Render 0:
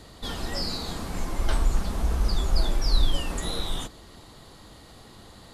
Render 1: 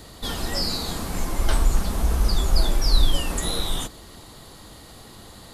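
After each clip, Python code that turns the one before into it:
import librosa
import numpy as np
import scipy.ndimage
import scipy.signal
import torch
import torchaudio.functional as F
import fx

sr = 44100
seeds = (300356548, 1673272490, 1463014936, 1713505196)

y = fx.high_shelf(x, sr, hz=10000.0, db=11.5)
y = y * librosa.db_to_amplitude(3.5)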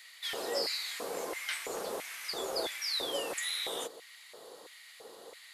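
y = fx.filter_lfo_highpass(x, sr, shape='square', hz=1.5, low_hz=470.0, high_hz=2100.0, q=4.7)
y = y * librosa.db_to_amplitude(-8.5)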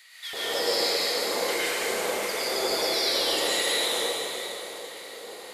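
y = fx.rev_plate(x, sr, seeds[0], rt60_s=3.7, hf_ratio=0.9, predelay_ms=90, drr_db=-10.0)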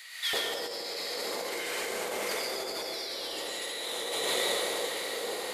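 y = fx.over_compress(x, sr, threshold_db=-34.0, ratio=-1.0)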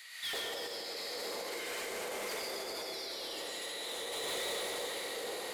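y = 10.0 ** (-29.0 / 20.0) * np.tanh(x / 10.0 ** (-29.0 / 20.0))
y = y + 10.0 ** (-10.5 / 20.0) * np.pad(y, (int(338 * sr / 1000.0), 0))[:len(y)]
y = y * librosa.db_to_amplitude(-4.0)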